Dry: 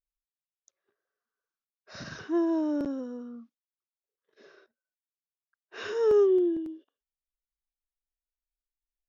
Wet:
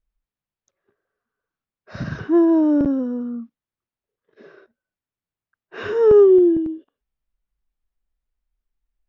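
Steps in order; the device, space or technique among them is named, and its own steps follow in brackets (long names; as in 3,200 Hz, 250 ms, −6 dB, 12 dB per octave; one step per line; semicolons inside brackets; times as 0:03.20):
bass and treble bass +10 dB, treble −9 dB
behind a face mask (high-shelf EQ 2,900 Hz −7 dB)
level +9 dB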